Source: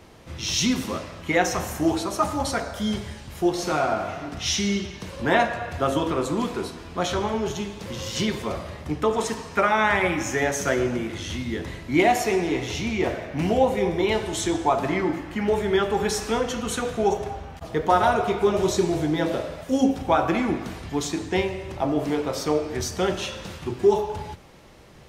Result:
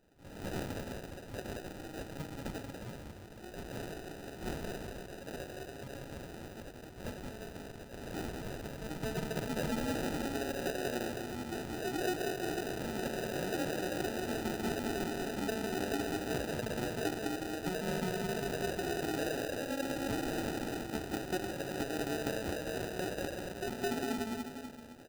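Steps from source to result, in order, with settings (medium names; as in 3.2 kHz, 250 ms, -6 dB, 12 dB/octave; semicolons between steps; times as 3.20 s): in parallel at -10.5 dB: Schmitt trigger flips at -22.5 dBFS; on the sum: tilt EQ -2.5 dB/octave; pre-echo 220 ms -15 dB; peak limiter -12.5 dBFS, peak gain reduction 8.5 dB; band-pass sweep 4.4 kHz -> 850 Hz, 7.88–9.21 s; compression 6:1, threshold -34 dBFS, peak gain reduction 13 dB; on a send: bouncing-ball echo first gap 190 ms, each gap 0.85×, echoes 5; on the sum: wow and flutter 21 cents; sample-rate reducer 1.1 kHz, jitter 0%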